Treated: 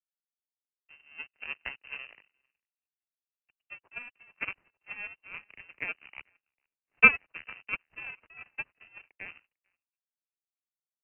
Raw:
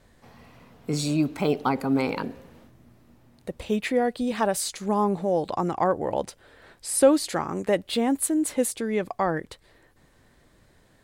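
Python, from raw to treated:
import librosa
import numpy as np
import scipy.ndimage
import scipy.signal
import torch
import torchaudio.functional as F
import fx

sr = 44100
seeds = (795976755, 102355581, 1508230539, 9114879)

p1 = fx.halfwave_hold(x, sr)
p2 = p1 + fx.echo_alternate(p1, sr, ms=448, hz=2300.0, feedback_pct=63, wet_db=-11.0, dry=0)
p3 = fx.power_curve(p2, sr, exponent=3.0)
p4 = scipy.signal.sosfilt(scipy.signal.butter(2, 54.0, 'highpass', fs=sr, output='sos'), p3)
p5 = fx.freq_invert(p4, sr, carrier_hz=2900)
p6 = fx.band_widen(p5, sr, depth_pct=40)
y = p6 * librosa.db_to_amplitude(-3.5)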